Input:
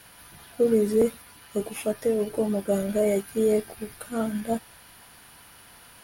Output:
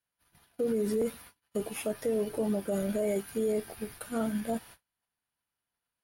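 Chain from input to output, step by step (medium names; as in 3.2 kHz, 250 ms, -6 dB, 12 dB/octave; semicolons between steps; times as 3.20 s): gate -45 dBFS, range -36 dB; peak limiter -19.5 dBFS, peak gain reduction 8 dB; trim -2.5 dB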